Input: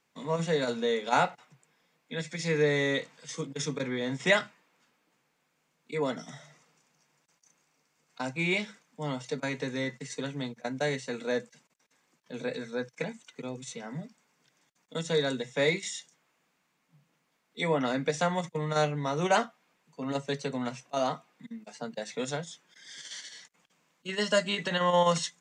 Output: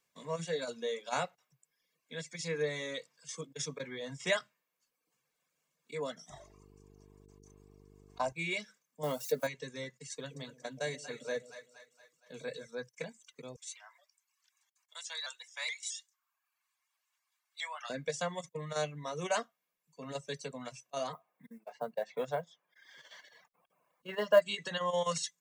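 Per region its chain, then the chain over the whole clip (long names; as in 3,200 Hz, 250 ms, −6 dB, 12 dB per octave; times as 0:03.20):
0:06.29–0:08.32: flat-topped bell 810 Hz +12.5 dB 1.2 octaves + hum with harmonics 50 Hz, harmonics 9, −49 dBFS −1 dB per octave
0:09.03–0:09.47: spike at every zero crossing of −37 dBFS + parametric band 560 Hz +10.5 dB 2.4 octaves
0:10.13–0:12.67: echo with a time of its own for lows and highs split 650 Hz, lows 126 ms, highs 234 ms, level −8 dB + floating-point word with a short mantissa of 8 bits
0:13.56–0:17.90: Butterworth high-pass 800 Hz + pitch modulation by a square or saw wave saw up 4.7 Hz, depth 100 cents
0:21.13–0:24.42: low-pass filter 2,400 Hz + parametric band 770 Hz +12 dB 1.4 octaves + log-companded quantiser 8 bits
whole clip: reverb reduction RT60 0.82 s; high-shelf EQ 5,500 Hz +10.5 dB; comb filter 1.8 ms, depth 37%; level −8.5 dB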